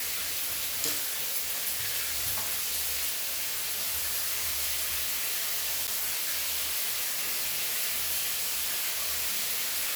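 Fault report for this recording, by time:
3.09–3.80 s: clipped -28 dBFS
5.87–5.88 s: dropout 8.4 ms

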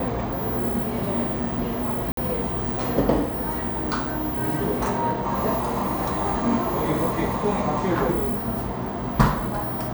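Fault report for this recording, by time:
2.12–2.17 s: dropout 53 ms

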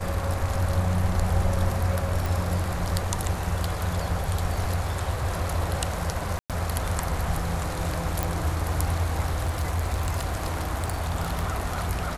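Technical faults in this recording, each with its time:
2.26 s: pop
6.39–6.50 s: dropout 107 ms
8.23 s: pop
9.45–11.44 s: clipped -21.5 dBFS

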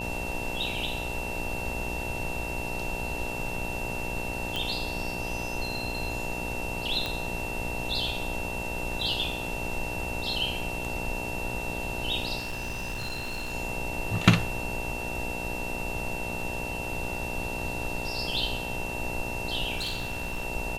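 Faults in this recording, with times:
buzz 60 Hz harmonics 16 -37 dBFS
whine 2.7 kHz -35 dBFS
4.56 s: pop
7.06 s: pop -16 dBFS
12.38–13.55 s: clipped -29.5 dBFS
19.76–20.45 s: clipped -27.5 dBFS

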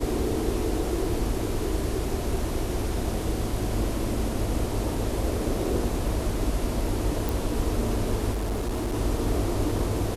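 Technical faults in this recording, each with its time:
7.29 s: pop
8.33–8.96 s: clipped -24.5 dBFS

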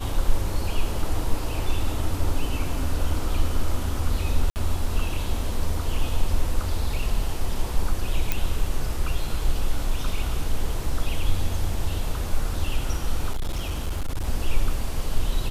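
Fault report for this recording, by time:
4.50–4.56 s: dropout 59 ms
8.32 s: pop
13.31–14.26 s: clipped -22 dBFS

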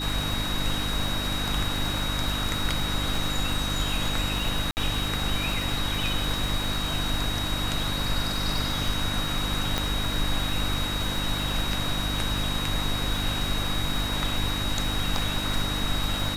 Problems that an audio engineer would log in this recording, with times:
crackle 180 per s -33 dBFS
hum 50 Hz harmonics 6 -32 dBFS
whine 3.8 kHz -31 dBFS
4.71–4.77 s: dropout 59 ms
9.78 s: pop -10 dBFS

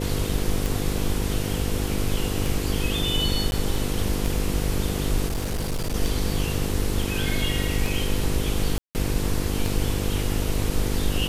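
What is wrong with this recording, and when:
buzz 50 Hz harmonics 10 -28 dBFS
tick 33 1/3 rpm
3.51–3.52 s: dropout
5.26–5.94 s: clipped -22.5 dBFS
8.78–8.95 s: dropout 169 ms

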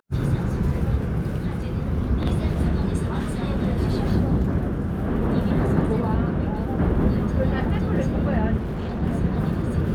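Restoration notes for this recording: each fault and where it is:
8.59–9.03 s: clipped -24.5 dBFS

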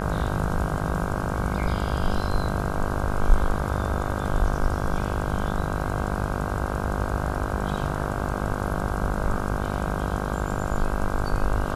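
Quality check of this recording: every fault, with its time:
buzz 50 Hz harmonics 32 -29 dBFS

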